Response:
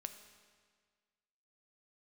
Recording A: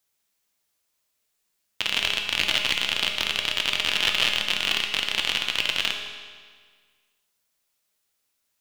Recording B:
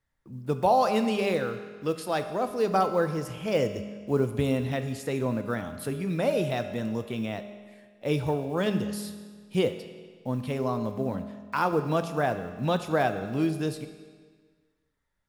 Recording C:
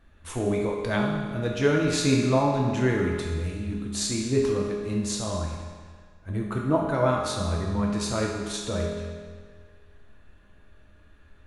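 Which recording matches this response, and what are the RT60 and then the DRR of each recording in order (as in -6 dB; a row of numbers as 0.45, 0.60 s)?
B; 1.7, 1.7, 1.7 s; 2.0, 7.5, -2.5 dB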